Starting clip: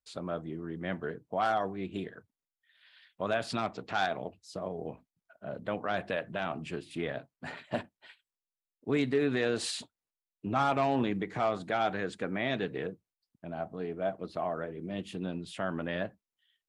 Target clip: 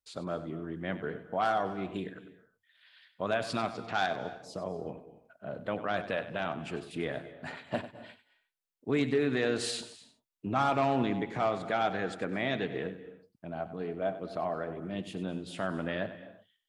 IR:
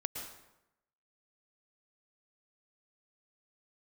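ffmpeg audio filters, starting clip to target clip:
-filter_complex "[0:a]asplit=2[s0][s1];[1:a]atrim=start_sample=2205,afade=t=out:st=0.34:d=0.01,atrim=end_sample=15435,adelay=96[s2];[s1][s2]afir=irnorm=-1:irlink=0,volume=0.251[s3];[s0][s3]amix=inputs=2:normalize=0"

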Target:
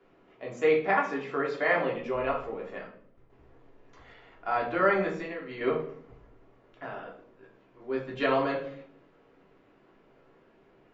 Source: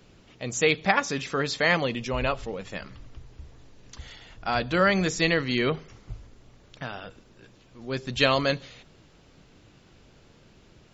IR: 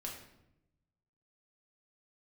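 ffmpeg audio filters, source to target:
-filter_complex "[0:a]asettb=1/sr,asplit=3[s0][s1][s2];[s0]atrim=end=2.874[s3];[s1]atrim=start=2.87:end=3.3,asetpts=PTS-STARTPTS,afade=t=in:d=0.004:c=qsin,afade=t=out:st=0.426:d=0.004:c=qsin,agate=range=0.0224:threshold=0.0178:ratio=3:detection=peak[s4];[s2]atrim=start=3.296[s5];[s3][s4]acrossfade=d=0.004:c1=hsin:c2=qsin[s6];[s6][s5]acrossfade=d=0.004:c1=qsin:c2=hsin,acrossover=split=260 2200:gain=0.126 1 0.0708[s7][s8][s9];[s7][s8][s9]amix=inputs=3:normalize=0,asettb=1/sr,asplit=3[s10][s11][s12];[s10]atrim=end=5.074[s13];[s11]atrim=start=5.07:end=5.61,asetpts=PTS-STARTPTS,afade=t=in:d=0.004:c=qsin,afade=t=out:st=0.536:d=0.004:c=qsin,acompressor=threshold=0.02:ratio=6[s14];[s12]atrim=start=5.606[s15];[s13][s14]acrossfade=d=0.004:c1=hsin:c2=qsin[s16];[s16][s15]acrossfade=d=0.004:c1=qsin:c2=hsin[s17];[1:a]atrim=start_sample=2205,asetrate=74970,aresample=44100[s18];[s17][s18]afir=irnorm=-1:irlink=0,volume=1.78"

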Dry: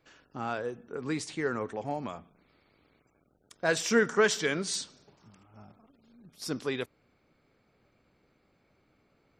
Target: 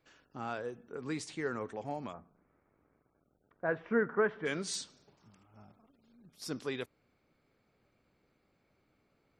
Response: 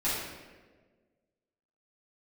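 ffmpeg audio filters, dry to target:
-filter_complex "[0:a]asplit=3[s0][s1][s2];[s0]afade=t=out:st=2.12:d=0.02[s3];[s1]lowpass=f=1700:w=0.5412,lowpass=f=1700:w=1.3066,afade=t=in:st=2.12:d=0.02,afade=t=out:st=4.45:d=0.02[s4];[s2]afade=t=in:st=4.45:d=0.02[s5];[s3][s4][s5]amix=inputs=3:normalize=0,volume=0.562"

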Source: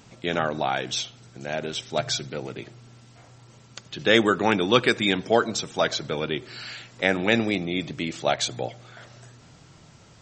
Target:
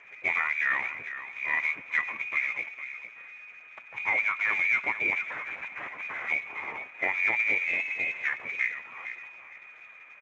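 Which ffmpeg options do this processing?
-filter_complex "[0:a]aeval=exprs='if(lt(val(0),0),0.708*val(0),val(0))':c=same,highpass=150,tremolo=f=130:d=0.4,acompressor=threshold=0.0398:ratio=12,tiltshelf=f=710:g=3.5,aecho=1:1:457|914|1371:0.266|0.0585|0.0129,asettb=1/sr,asplit=3[s0][s1][s2];[s0]atrim=end=5.264[s3];[s1]atrim=start=5.26:end=6.28,asetpts=PTS-STARTPTS,afade=t=in:d=0.004:c=qsin,afade=t=out:st=1.016:d=0.004:c=qsin,aeval=exprs='0.0158*(abs(mod(val(0)/0.0158+3,4)-2)-1)':c=same[s4];[s2]atrim=start=6.276[s5];[s3][s4]acrossfade=d=0.004:c1=hsin:c2=qsin[s6];[s6][s5]acrossfade=d=0.004:c1=qsin:c2=hsin,asettb=1/sr,asplit=3[s7][s8][s9];[s7]atrim=end=7.644[s10];[s8]atrim=start=7.64:end=8.44,asetpts=PTS-STARTPTS,afade=t=in:d=0.004:c=qsin,afade=t=out:st=0.796:d=0.004:c=qsin,aeval=exprs='val(0)*sin(2*PI*180*n/s)':c=same[s11];[s9]atrim=start=8.436[s12];[s10][s11]acrossfade=d=0.004:c1=hsin:c2=qsin[s13];[s13][s12]acrossfade=d=0.004:c1=qsin:c2=hsin,lowpass=f=2200:t=q:w=0.5098,lowpass=f=2200:t=q:w=0.6013,lowpass=f=2200:t=q:w=0.9,lowpass=f=2200:t=q:w=2.563,afreqshift=-2600,volume=2.37" -ar 16000 -c:a libspeex -b:a 13k

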